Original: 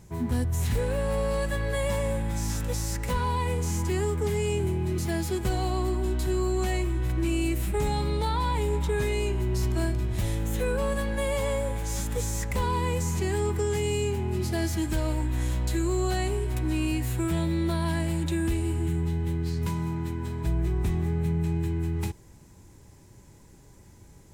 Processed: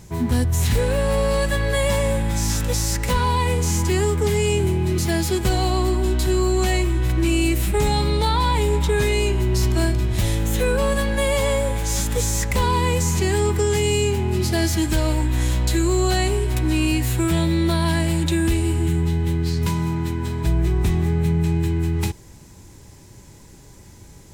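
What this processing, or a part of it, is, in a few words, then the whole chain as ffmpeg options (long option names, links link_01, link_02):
presence and air boost: -af "equalizer=frequency=4200:width_type=o:width=1.8:gain=4.5,highshelf=frequency=12000:gain=3,volume=7dB"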